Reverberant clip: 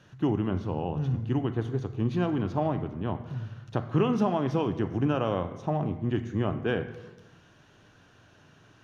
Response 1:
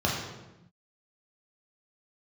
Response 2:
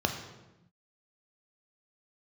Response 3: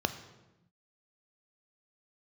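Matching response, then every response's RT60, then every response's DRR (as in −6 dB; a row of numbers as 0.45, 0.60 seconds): 3; 0.95, 0.95, 0.95 seconds; −4.0, 4.0, 9.0 decibels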